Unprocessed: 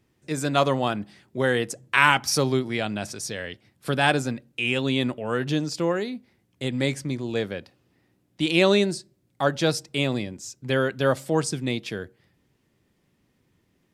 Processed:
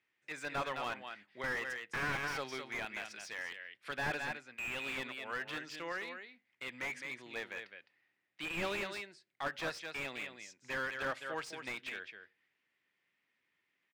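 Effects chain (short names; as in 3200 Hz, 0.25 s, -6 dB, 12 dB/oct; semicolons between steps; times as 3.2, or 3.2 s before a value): band-pass 2100 Hz, Q 2; outdoor echo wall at 36 m, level -8 dB; slew limiter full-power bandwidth 36 Hz; gain -1.5 dB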